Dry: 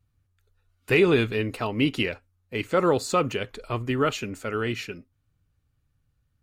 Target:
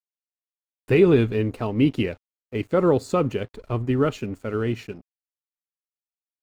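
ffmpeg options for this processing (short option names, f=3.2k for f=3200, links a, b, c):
-af "aeval=exprs='sgn(val(0))*max(abs(val(0))-0.00447,0)':c=same,tiltshelf=f=780:g=6.5"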